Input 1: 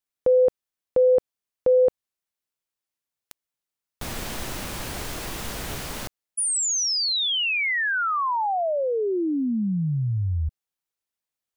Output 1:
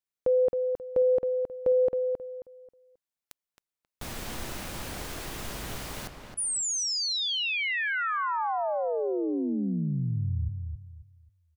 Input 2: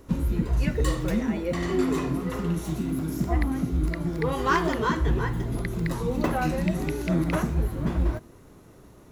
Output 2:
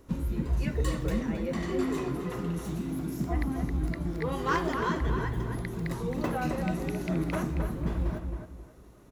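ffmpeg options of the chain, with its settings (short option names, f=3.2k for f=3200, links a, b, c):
-filter_complex "[0:a]asplit=2[a][b];[b]adelay=268,lowpass=f=2.6k:p=1,volume=-5.5dB,asplit=2[c][d];[d]adelay=268,lowpass=f=2.6k:p=1,volume=0.29,asplit=2[e][f];[f]adelay=268,lowpass=f=2.6k:p=1,volume=0.29,asplit=2[g][h];[h]adelay=268,lowpass=f=2.6k:p=1,volume=0.29[i];[a][c][e][g][i]amix=inputs=5:normalize=0,volume=-5.5dB"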